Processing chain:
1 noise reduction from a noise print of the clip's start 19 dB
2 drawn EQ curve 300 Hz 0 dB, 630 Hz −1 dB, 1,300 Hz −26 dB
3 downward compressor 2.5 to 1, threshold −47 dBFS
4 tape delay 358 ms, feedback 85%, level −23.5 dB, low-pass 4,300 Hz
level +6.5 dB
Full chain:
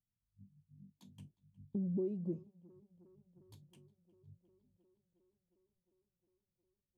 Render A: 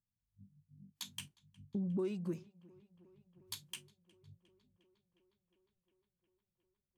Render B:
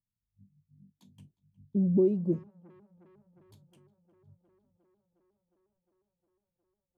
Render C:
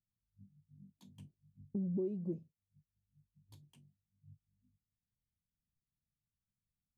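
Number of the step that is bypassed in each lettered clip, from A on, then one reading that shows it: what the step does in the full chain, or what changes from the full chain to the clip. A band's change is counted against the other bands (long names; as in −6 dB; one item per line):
2, change in momentary loudness spread −9 LU
3, average gain reduction 6.0 dB
4, echo-to-direct ratio −49.0 dB to none audible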